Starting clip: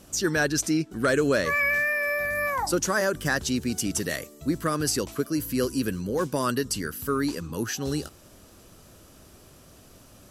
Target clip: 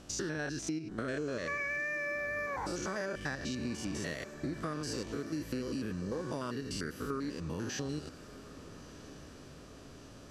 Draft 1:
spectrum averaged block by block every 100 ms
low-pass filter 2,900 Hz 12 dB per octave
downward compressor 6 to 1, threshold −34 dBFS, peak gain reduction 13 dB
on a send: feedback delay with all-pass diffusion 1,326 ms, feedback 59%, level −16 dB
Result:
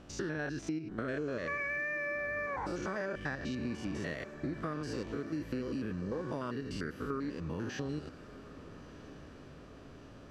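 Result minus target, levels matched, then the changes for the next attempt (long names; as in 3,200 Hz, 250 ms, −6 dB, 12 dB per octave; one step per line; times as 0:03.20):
8,000 Hz band −9.5 dB
change: low-pass filter 5,900 Hz 12 dB per octave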